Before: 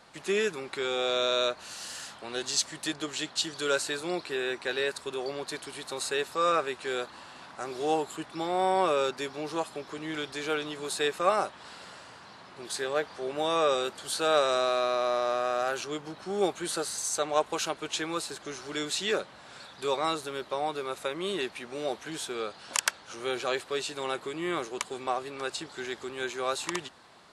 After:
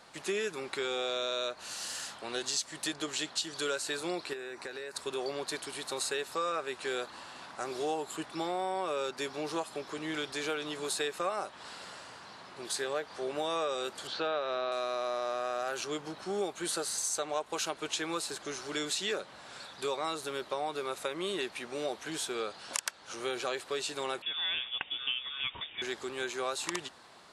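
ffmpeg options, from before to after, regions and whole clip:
ffmpeg -i in.wav -filter_complex "[0:a]asettb=1/sr,asplit=3[link_01][link_02][link_03];[link_01]atrim=end=4.334[link_04];[link_02]atrim=start=4.33:end=4.96,asetpts=PTS-STARTPTS,afade=type=in:duration=0.004:curve=qsin,afade=type=out:start_time=0.626:duration=0.004:curve=qsin,acompressor=threshold=-36dB:ratio=8:attack=3.2:release=140:knee=1:detection=peak,equalizer=frequency=3200:width_type=o:width=0.4:gain=-9.5[link_05];[link_03]atrim=start=4.956[link_06];[link_04][link_05]acrossfade=duration=0.004:curve1=hsin:curve2=qsin[link_07];[link_07][link_06]acrossfade=duration=0.004:curve1=qsin:curve2=hsin,asettb=1/sr,asplit=3[link_08][link_09][link_10];[link_08]atrim=end=14.074[link_11];[link_09]atrim=start=14.07:end=14.72,asetpts=PTS-STARTPTS,afade=type=in:duration=0.004:curve=qsin,afade=type=out:start_time=0.646:duration=0.004:curve=qsin,lowpass=frequency=4500:width=0.5412,lowpass=frequency=4500:width=1.3066,acrossover=split=3400[link_12][link_13];[link_13]acompressor=threshold=-42dB:ratio=4:attack=1:release=60[link_14];[link_12][link_14]amix=inputs=2:normalize=0[link_15];[link_10]atrim=start=14.716[link_16];[link_11][link_15]acrossfade=duration=0.004:curve1=hsin:curve2=qsin[link_17];[link_17][link_16]acrossfade=duration=0.004:curve1=qsin:curve2=hsin,asettb=1/sr,asplit=3[link_18][link_19][link_20];[link_18]atrim=end=24.224[link_21];[link_19]atrim=start=24.22:end=25.82,asetpts=PTS-STARTPTS,afade=type=in:duration=0.004:curve=qsin,afade=type=out:start_time=1.596:duration=0.004:curve=qsin,lowpass=frequency=3200:width_type=q:width=0.5098,lowpass=frequency=3200:width_type=q:width=0.6013,lowpass=frequency=3200:width_type=q:width=0.9,lowpass=frequency=3200:width_type=q:width=2.563,afreqshift=-3800,equalizer=frequency=110:width=0.65:gain=5.5[link_22];[link_20]atrim=start=25.816[link_23];[link_21][link_22]acrossfade=duration=0.004:curve1=hsin:curve2=qsin[link_24];[link_24][link_23]acrossfade=duration=0.004:curve1=qsin:curve2=hsin,bass=frequency=250:gain=-3,treble=frequency=4000:gain=2,acompressor=threshold=-30dB:ratio=5" out.wav

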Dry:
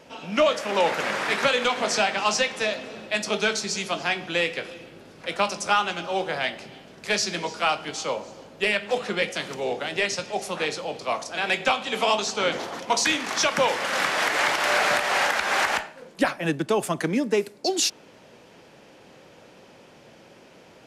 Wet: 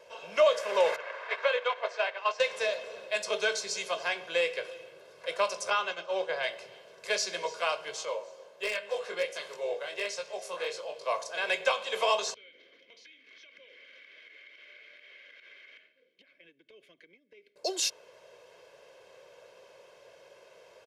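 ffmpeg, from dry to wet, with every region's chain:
ffmpeg -i in.wav -filter_complex "[0:a]asettb=1/sr,asplit=3[link_01][link_02][link_03];[link_01]atrim=end=0.964[link_04];[link_02]atrim=start=0.96:end=2.4,asetpts=PTS-STARTPTS,afade=type=in:duration=0.004:curve=qsin,afade=type=out:start_time=1.436:duration=0.004:curve=qsin,highpass=490,lowpass=3000,agate=range=-8dB:threshold=-27dB:ratio=16:release=100:detection=peak[link_05];[link_03]atrim=start=2.396[link_06];[link_04][link_05]acrossfade=duration=0.004:curve1=hsin:curve2=qsin[link_07];[link_07][link_06]acrossfade=duration=0.004:curve1=qsin:curve2=hsin,asettb=1/sr,asplit=3[link_08][link_09][link_10];[link_08]atrim=end=5.704[link_11];[link_09]atrim=start=5.7:end=6.43,asetpts=PTS-STARTPTS,afade=type=in:duration=0.004:curve=qsin,afade=type=out:start_time=0.726:duration=0.004:curve=qsin,lowpass=frequency=8900:width=0.5412,lowpass=frequency=8900:width=1.3066,agate=range=-33dB:threshold=-30dB:ratio=3:release=100:detection=peak,acrossover=split=6100[link_12][link_13];[link_13]acompressor=threshold=-60dB:ratio=4:attack=1:release=60[link_14];[link_12][link_14]amix=inputs=2:normalize=0[link_15];[link_10]atrim=start=6.426[link_16];[link_11][link_15]acrossfade=duration=0.004:curve1=hsin:curve2=qsin[link_17];[link_17][link_16]acrossfade=duration=0.004:curve1=qsin:curve2=hsin,asettb=1/sr,asplit=3[link_18][link_19][link_20];[link_18]atrim=end=8.054[link_21];[link_19]atrim=start=8.05:end=11.06,asetpts=PTS-STARTPTS,afade=type=in:duration=0.004:curve=qsin,afade=type=out:start_time=3.006:duration=0.004:curve=qsin,flanger=delay=19:depth=3.7:speed=1.4,lowshelf=frequency=100:gain=-10.5,aeval=exprs='0.133*(abs(mod(val(0)/0.133+3,4)-2)-1)':channel_layout=same[link_22];[link_20]atrim=start=11.056[link_23];[link_21][link_22]acrossfade=duration=0.004:curve1=hsin:curve2=qsin[link_24];[link_24][link_23]acrossfade=duration=0.004:curve1=qsin:curve2=hsin,asettb=1/sr,asplit=3[link_25][link_26][link_27];[link_25]atrim=end=12.344[link_28];[link_26]atrim=start=12.34:end=17.56,asetpts=PTS-STARTPTS,afade=type=in:duration=0.004:curve=qsin,afade=type=out:start_time=5.216:duration=0.004:curve=qsin,asplit=3[link_29][link_30][link_31];[link_29]bandpass=frequency=270:width_type=q:width=8,volume=0dB[link_32];[link_30]bandpass=frequency=2290:width_type=q:width=8,volume=-6dB[link_33];[link_31]bandpass=frequency=3010:width_type=q:width=8,volume=-9dB[link_34];[link_32][link_33][link_34]amix=inputs=3:normalize=0,acompressor=threshold=-43dB:ratio=10:attack=3.2:release=140:knee=1:detection=peak,equalizer=frequency=8000:width_type=o:width=0.42:gain=-14[link_35];[link_27]atrim=start=17.556[link_36];[link_28][link_35]acrossfade=duration=0.004:curve1=hsin:curve2=qsin[link_37];[link_37][link_36]acrossfade=duration=0.004:curve1=qsin:curve2=hsin,lowshelf=frequency=350:width_type=q:width=1.5:gain=-10,bandreject=frequency=50:width_type=h:width=6,bandreject=frequency=100:width_type=h:width=6,bandreject=frequency=150:width_type=h:width=6,aecho=1:1:1.9:0.64,volume=-7.5dB" out.wav

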